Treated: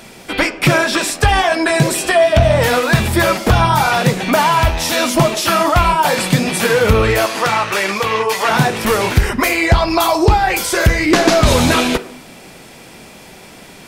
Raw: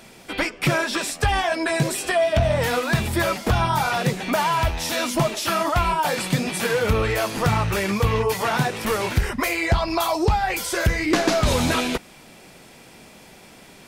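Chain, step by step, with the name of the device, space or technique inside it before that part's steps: filtered reverb send (on a send: high-pass 180 Hz 24 dB/octave + low-pass 4.5 kHz + reverberation RT60 0.70 s, pre-delay 24 ms, DRR 13 dB); 7.26–8.49 s: on the sum: frequency weighting A; trim +8 dB

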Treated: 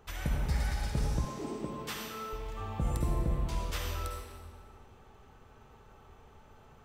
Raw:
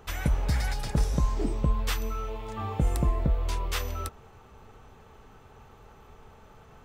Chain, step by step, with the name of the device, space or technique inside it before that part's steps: stairwell (reverberation RT60 1.7 s, pre-delay 47 ms, DRR 0 dB); 1.25–2.33 s: high-pass 210 Hz 12 dB/octave; trim -7.5 dB

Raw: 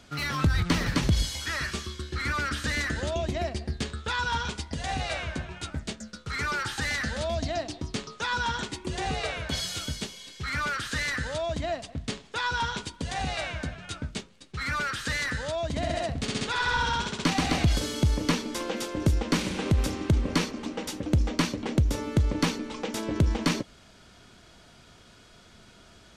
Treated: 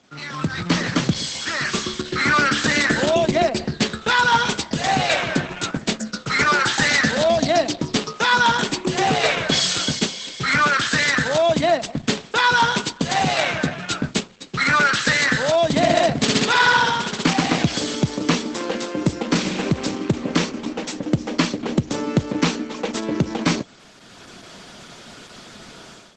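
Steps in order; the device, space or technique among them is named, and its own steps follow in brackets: video call (high-pass 140 Hz 24 dB/octave; level rider gain up to 15.5 dB; trim -1 dB; Opus 12 kbps 48 kHz)

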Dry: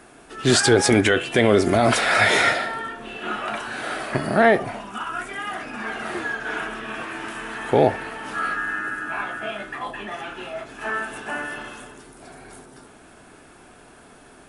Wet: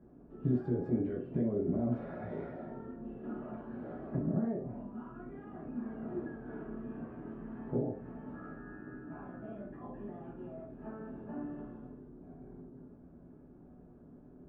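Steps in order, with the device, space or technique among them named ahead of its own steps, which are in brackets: television next door (compression 4:1, threshold -23 dBFS, peak gain reduction 11 dB; low-pass 320 Hz 12 dB/octave; reverberation RT60 0.35 s, pre-delay 3 ms, DRR -5 dB); trim -8.5 dB

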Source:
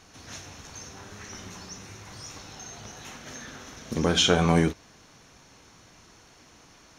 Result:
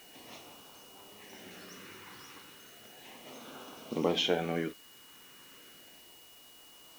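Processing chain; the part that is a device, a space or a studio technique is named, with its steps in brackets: shortwave radio (band-pass 280–2900 Hz; tremolo 0.54 Hz, depth 59%; LFO notch sine 0.34 Hz 640–1900 Hz; whistle 2.9 kHz -58 dBFS; white noise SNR 18 dB)

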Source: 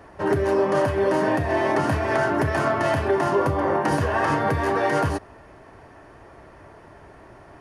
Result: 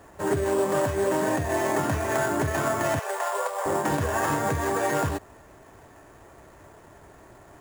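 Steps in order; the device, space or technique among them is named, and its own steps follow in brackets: early companding sampler (sample-rate reducer 8.4 kHz, jitter 0%; companded quantiser 6-bit); 2.99–3.66 s: elliptic high-pass 470 Hz, stop band 40 dB; trim -3.5 dB

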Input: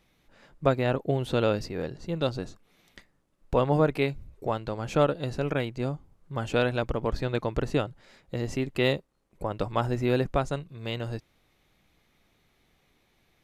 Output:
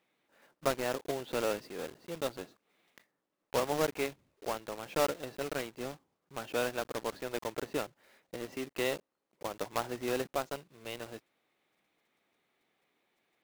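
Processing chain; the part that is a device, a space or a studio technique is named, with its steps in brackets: early digital voice recorder (band-pass 290–3400 Hz; block-companded coder 3-bit); trim -6.5 dB

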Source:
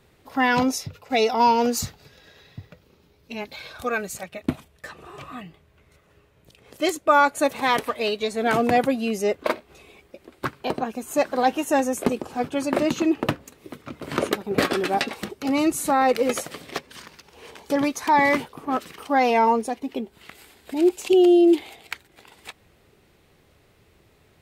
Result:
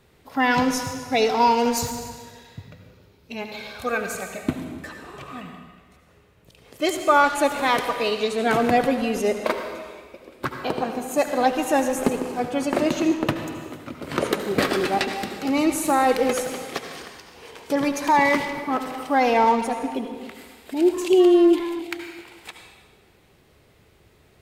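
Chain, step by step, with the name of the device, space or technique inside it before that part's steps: saturated reverb return (on a send at -3 dB: reverberation RT60 1.4 s, pre-delay 67 ms + saturation -22.5 dBFS, distortion -8 dB)

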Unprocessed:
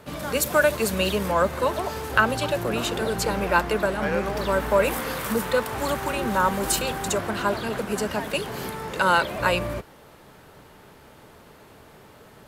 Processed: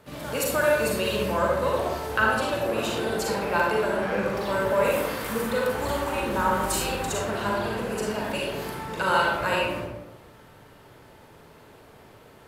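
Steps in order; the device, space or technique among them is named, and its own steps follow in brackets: bathroom (reverberation RT60 0.95 s, pre-delay 35 ms, DRR -3.5 dB); trim -6.5 dB

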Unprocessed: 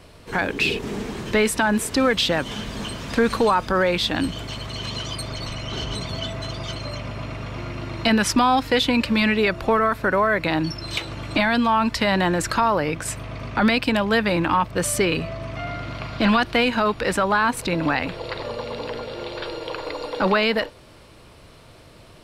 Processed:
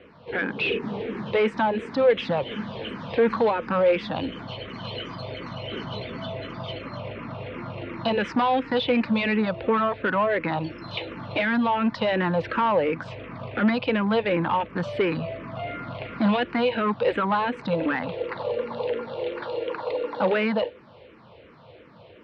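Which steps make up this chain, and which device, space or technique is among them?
barber-pole phaser into a guitar amplifier (barber-pole phaser -2.8 Hz; saturation -18.5 dBFS, distortion -14 dB; cabinet simulation 110–3400 Hz, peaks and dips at 210 Hz +4 dB, 500 Hz +8 dB, 890 Hz +3 dB)

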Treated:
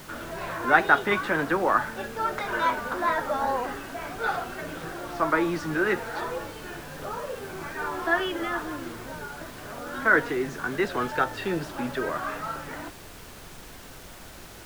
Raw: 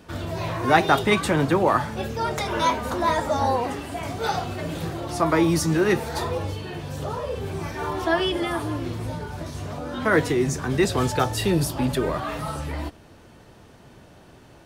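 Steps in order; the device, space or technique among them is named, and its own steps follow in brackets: horn gramophone (band-pass 230–3200 Hz; peaking EQ 1.5 kHz +10.5 dB 0.55 oct; wow and flutter; pink noise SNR 16 dB); trim -5 dB

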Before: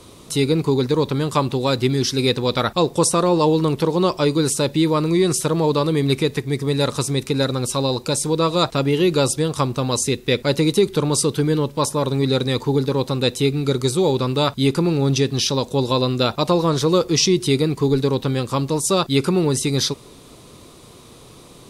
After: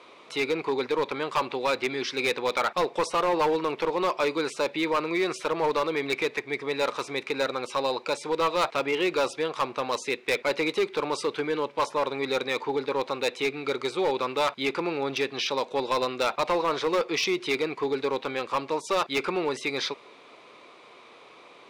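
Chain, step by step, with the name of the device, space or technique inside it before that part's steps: megaphone (band-pass 590–2600 Hz; peaking EQ 2.3 kHz +8 dB 0.3 oct; hard clipper -19.5 dBFS, distortion -12 dB)

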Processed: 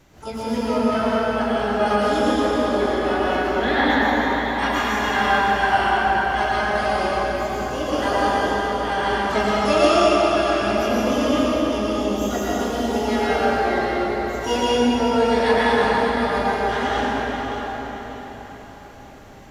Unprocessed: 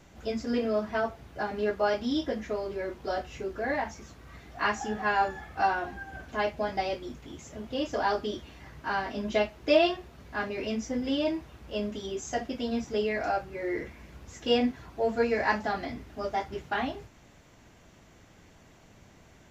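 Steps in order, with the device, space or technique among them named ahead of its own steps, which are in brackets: 2.80–4.40 s: ten-band graphic EQ 125 Hz -5 dB, 250 Hz +12 dB, 500 Hz -8 dB, 1 kHz +9 dB, 2 kHz +7 dB, 4 kHz -9 dB; shimmer-style reverb (harmony voices +12 st -7 dB; reverberation RT60 4.8 s, pre-delay 96 ms, DRR -8 dB); echo whose repeats swap between lows and highs 292 ms, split 1.2 kHz, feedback 57%, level -6 dB

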